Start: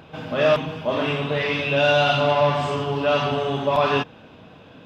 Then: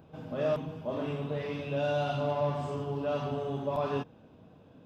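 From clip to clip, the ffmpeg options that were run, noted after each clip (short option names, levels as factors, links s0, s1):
-af "equalizer=f=2600:w=0.42:g=-13,volume=0.422"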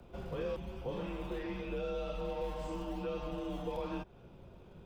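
-filter_complex "[0:a]acrossover=split=110|440|1300[s0][s1][s2][s3];[s0]acrusher=samples=29:mix=1:aa=0.000001:lfo=1:lforange=29:lforate=0.88[s4];[s4][s1][s2][s3]amix=inputs=4:normalize=0,afreqshift=-97,acrossover=split=430|1600[s5][s6][s7];[s5]acompressor=threshold=0.00794:ratio=4[s8];[s6]acompressor=threshold=0.00631:ratio=4[s9];[s7]acompressor=threshold=0.00178:ratio=4[s10];[s8][s9][s10]amix=inputs=3:normalize=0,volume=1.19"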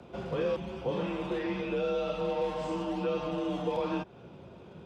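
-af "highpass=120,lowpass=7200,volume=2.37"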